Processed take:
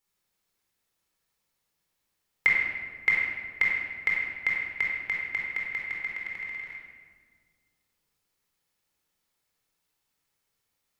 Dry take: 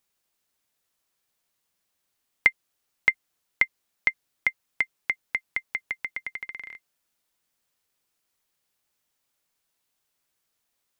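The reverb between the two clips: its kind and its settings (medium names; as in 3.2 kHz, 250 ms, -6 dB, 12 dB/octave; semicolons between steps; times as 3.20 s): simulated room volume 1900 m³, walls mixed, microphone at 4.2 m; trim -7 dB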